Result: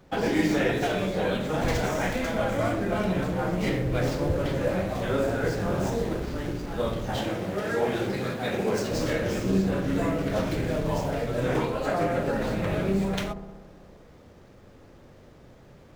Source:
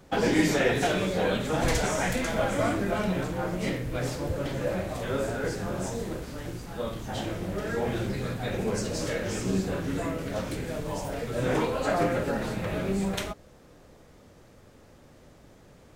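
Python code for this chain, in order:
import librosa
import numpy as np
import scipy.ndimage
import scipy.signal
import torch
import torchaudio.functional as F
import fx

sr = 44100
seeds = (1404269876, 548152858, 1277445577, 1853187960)

y = scipy.signal.medfilt(x, 5)
y = fx.highpass(y, sr, hz=260.0, slope=6, at=(7.16, 8.91))
y = fx.rider(y, sr, range_db=3, speed_s=0.5)
y = fx.echo_wet_lowpass(y, sr, ms=62, feedback_pct=74, hz=780.0, wet_db=-8.5)
y = y * librosa.db_to_amplitude(1.5)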